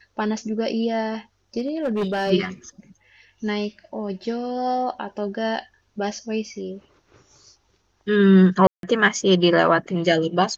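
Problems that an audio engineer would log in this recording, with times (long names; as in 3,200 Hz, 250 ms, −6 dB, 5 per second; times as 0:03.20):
0:01.59–0:02.31: clipping −19.5 dBFS
0:08.67–0:08.83: drop-out 162 ms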